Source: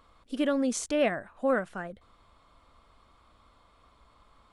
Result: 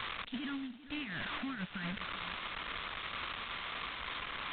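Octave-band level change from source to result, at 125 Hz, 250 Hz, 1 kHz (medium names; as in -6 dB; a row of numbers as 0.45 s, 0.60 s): +1.0 dB, -10.0 dB, -2.5 dB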